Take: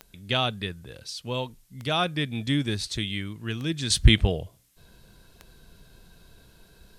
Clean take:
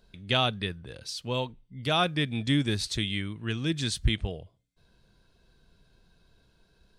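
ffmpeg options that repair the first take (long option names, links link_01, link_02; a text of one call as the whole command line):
ffmpeg -i in.wav -af "adeclick=threshold=4,agate=range=-21dB:threshold=-48dB,asetnsamples=nb_out_samples=441:pad=0,asendcmd='3.9 volume volume -9.5dB',volume=0dB" out.wav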